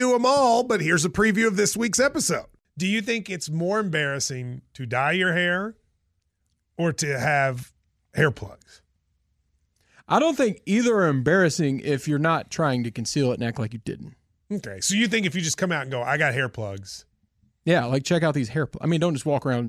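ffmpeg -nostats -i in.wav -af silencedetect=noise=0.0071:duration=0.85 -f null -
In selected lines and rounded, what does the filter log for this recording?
silence_start: 5.72
silence_end: 6.78 | silence_duration: 1.06
silence_start: 8.76
silence_end: 9.99 | silence_duration: 1.22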